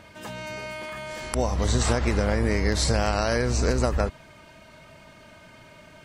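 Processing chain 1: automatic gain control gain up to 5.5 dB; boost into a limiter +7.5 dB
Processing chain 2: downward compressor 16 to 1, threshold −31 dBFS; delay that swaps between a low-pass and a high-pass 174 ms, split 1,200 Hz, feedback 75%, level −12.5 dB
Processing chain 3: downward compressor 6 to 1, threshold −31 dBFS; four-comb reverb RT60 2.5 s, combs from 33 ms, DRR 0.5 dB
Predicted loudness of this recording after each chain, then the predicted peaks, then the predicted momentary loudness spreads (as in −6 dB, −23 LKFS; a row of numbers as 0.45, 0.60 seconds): −14.0, −36.0, −32.5 LKFS; −1.0, −13.5, −13.5 dBFS; 11, 13, 15 LU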